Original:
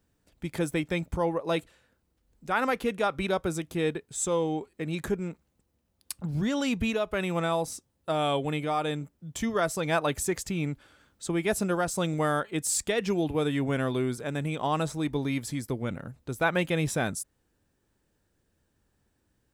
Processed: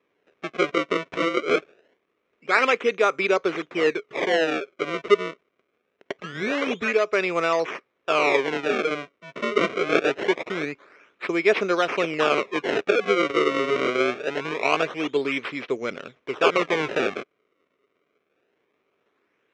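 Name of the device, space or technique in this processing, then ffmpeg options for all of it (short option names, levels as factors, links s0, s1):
circuit-bent sampling toy: -af "acrusher=samples=30:mix=1:aa=0.000001:lfo=1:lforange=48:lforate=0.24,highpass=410,equalizer=f=410:t=q:w=4:g=8,equalizer=f=840:t=q:w=4:g=-7,equalizer=f=1200:t=q:w=4:g=4,equalizer=f=2300:t=q:w=4:g=8,equalizer=f=4600:t=q:w=4:g=-10,lowpass=f=5100:w=0.5412,lowpass=f=5100:w=1.3066,volume=2.11"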